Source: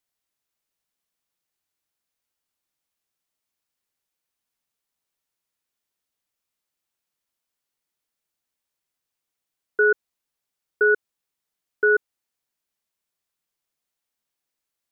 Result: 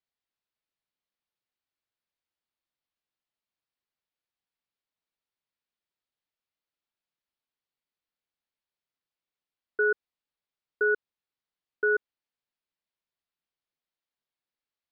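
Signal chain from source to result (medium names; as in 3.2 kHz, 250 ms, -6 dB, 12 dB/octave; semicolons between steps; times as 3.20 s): steep low-pass 4.8 kHz; trim -6.5 dB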